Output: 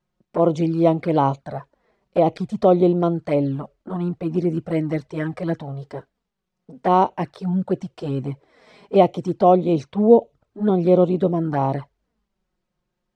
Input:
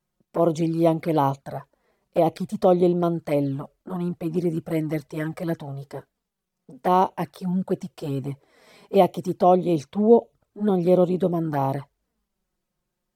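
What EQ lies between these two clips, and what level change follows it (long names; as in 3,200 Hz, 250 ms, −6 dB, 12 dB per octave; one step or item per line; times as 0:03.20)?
high-frequency loss of the air 97 metres
+3.0 dB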